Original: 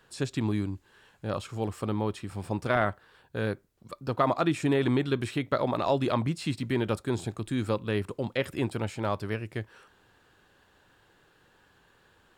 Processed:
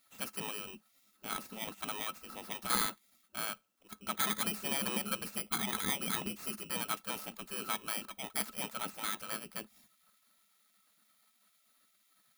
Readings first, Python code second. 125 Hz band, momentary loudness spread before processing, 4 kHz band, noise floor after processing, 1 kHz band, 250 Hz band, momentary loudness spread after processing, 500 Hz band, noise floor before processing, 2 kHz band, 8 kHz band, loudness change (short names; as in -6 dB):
-20.5 dB, 12 LU, +1.5 dB, -72 dBFS, -7.5 dB, -14.0 dB, 12 LU, -17.0 dB, -64 dBFS, -4.5 dB, +9.0 dB, -6.0 dB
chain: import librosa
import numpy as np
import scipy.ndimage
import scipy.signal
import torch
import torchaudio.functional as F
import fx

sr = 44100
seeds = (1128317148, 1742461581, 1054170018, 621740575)

y = fx.bit_reversed(x, sr, seeds[0], block=16)
y = fx.spec_gate(y, sr, threshold_db=-15, keep='weak')
y = fx.small_body(y, sr, hz=(210.0, 1300.0, 2700.0), ring_ms=65, db=15)
y = F.gain(torch.from_numpy(y), -1.0).numpy()